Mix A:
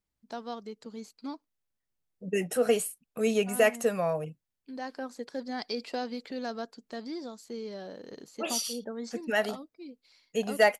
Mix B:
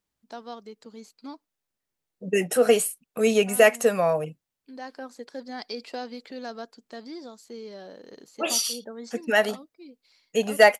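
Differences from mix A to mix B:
second voice +7.0 dB; master: add low shelf 130 Hz -10.5 dB

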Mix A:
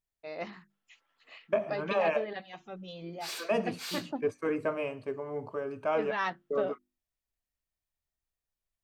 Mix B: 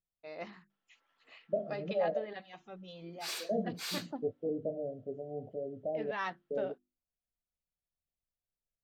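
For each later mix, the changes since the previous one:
first voice -5.0 dB; second voice: add rippled Chebyshev low-pass 750 Hz, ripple 6 dB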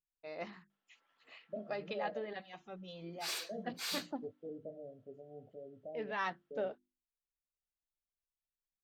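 second voice -11.0 dB

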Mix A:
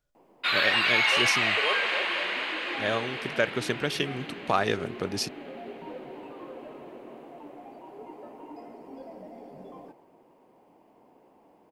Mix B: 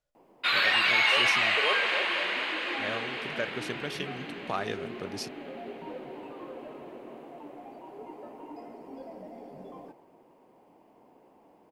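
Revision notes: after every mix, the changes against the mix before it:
first voice -7.5 dB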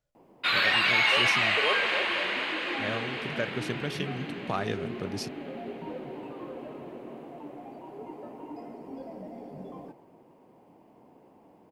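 master: add bell 120 Hz +8 dB 2.3 oct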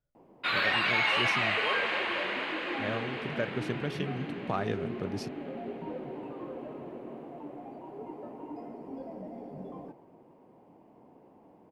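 second voice -5.5 dB; master: add high shelf 2500 Hz -9 dB

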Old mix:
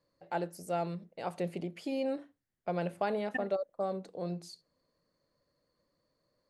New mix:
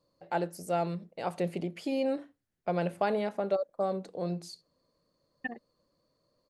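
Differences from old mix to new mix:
first voice +3.5 dB; second voice: entry +2.10 s

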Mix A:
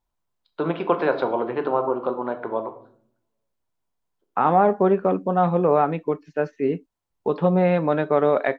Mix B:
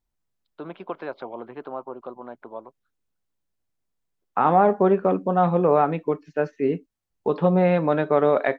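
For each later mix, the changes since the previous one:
first voice -8.0 dB; reverb: off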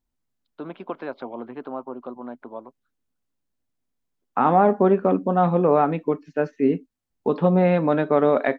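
master: add bell 250 Hz +8.5 dB 0.39 oct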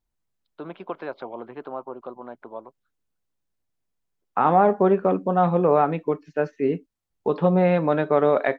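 master: add bell 250 Hz -8.5 dB 0.39 oct

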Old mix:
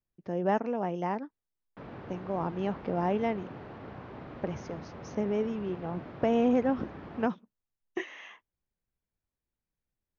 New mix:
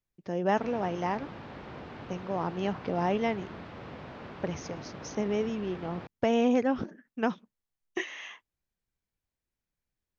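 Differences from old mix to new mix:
background: entry -1.20 s; master: add high shelf 2600 Hz +11.5 dB

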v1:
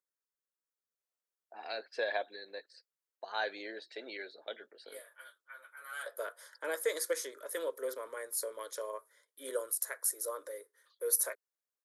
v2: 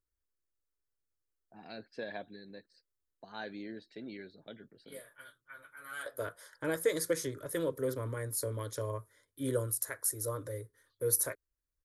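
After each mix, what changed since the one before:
first voice -8.5 dB; master: remove HPF 470 Hz 24 dB/oct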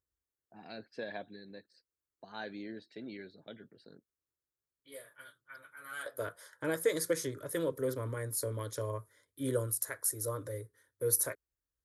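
first voice: entry -1.00 s; master: add HPF 50 Hz

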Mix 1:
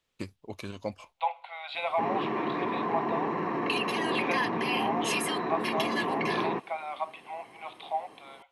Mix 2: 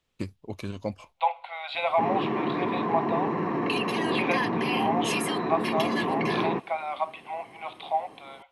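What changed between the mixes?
second voice +3.5 dB; master: add low shelf 330 Hz +7.5 dB

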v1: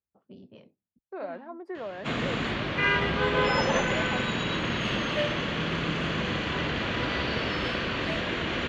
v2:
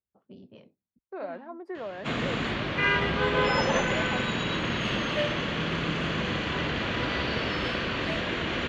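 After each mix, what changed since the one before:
none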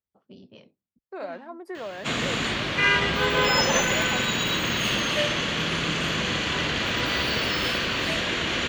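master: remove tape spacing loss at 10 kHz 22 dB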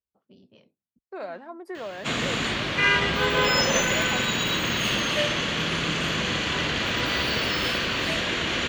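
first voice -6.5 dB

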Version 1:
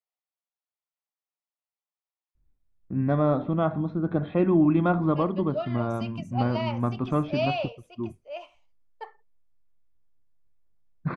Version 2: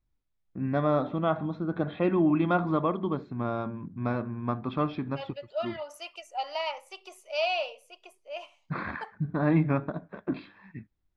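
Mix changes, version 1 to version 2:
first voice: entry -2.35 s; master: add tilt +2 dB/oct

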